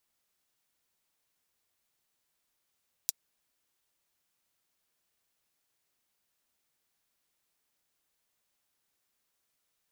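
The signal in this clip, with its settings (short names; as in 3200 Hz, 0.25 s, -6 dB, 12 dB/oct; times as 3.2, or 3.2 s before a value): closed hi-hat, high-pass 5200 Hz, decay 0.03 s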